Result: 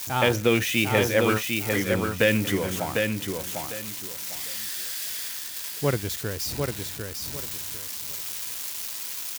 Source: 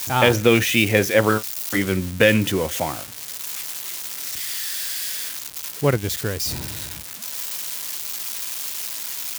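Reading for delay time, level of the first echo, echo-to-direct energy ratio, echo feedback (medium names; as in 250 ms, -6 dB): 750 ms, -4.5 dB, -4.0 dB, 24%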